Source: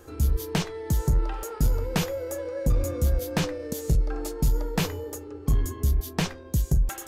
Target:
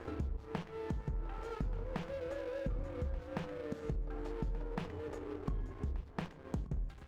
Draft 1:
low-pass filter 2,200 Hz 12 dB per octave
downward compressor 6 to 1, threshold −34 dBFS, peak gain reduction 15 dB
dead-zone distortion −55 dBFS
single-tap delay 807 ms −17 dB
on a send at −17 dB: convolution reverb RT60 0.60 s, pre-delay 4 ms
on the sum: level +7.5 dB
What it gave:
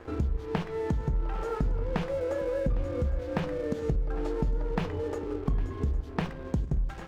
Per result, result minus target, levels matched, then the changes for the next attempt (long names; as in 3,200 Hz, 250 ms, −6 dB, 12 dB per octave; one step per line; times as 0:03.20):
downward compressor: peak gain reduction −9 dB; echo 374 ms early
change: downward compressor 6 to 1, threshold −44.5 dBFS, peak gain reduction 24 dB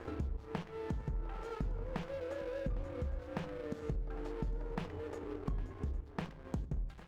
echo 374 ms early
change: single-tap delay 1,181 ms −17 dB